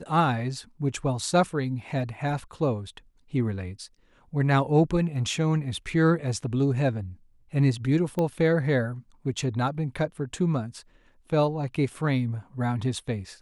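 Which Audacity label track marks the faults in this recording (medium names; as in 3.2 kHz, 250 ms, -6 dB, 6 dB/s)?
8.190000	8.190000	pop -16 dBFS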